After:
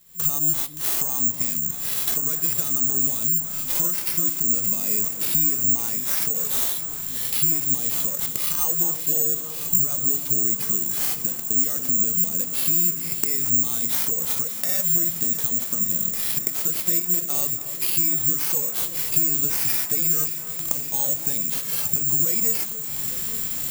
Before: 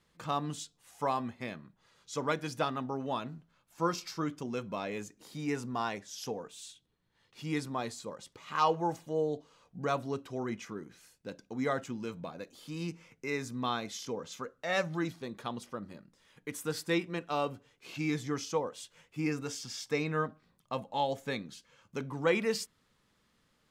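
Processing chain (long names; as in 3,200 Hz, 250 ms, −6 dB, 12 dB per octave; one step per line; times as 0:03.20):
camcorder AGC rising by 66 dB per second
parametric band 870 Hz −9.5 dB 2.2 octaves
bad sample-rate conversion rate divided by 6×, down none, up zero stuff
high-shelf EQ 11,000 Hz +9.5 dB
downward compressor 2.5 to 1, threshold −23 dBFS, peak gain reduction 10.5 dB
delay that swaps between a low-pass and a high-pass 286 ms, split 1,700 Hz, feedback 88%, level −11 dB
harmonic and percussive parts rebalanced percussive −7 dB
level +5.5 dB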